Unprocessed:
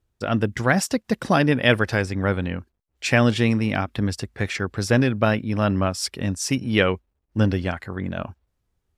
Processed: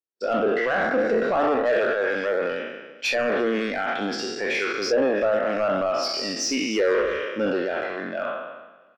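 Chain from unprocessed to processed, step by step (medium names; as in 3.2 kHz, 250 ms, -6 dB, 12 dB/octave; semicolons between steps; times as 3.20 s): spectral sustain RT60 1.60 s; Chebyshev band-pass 390–5800 Hz, order 2; low-pass that closes with the level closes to 1.6 kHz, closed at -15 dBFS; treble shelf 2.9 kHz +4.5 dB; in parallel at +3 dB: peak limiter -12 dBFS, peak gain reduction 9.5 dB; on the sum: saturation -15 dBFS, distortion -8 dB; on a send: feedback delay 346 ms, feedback 58%, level -23 dB; on the sum: spectral contrast expander 1.5:1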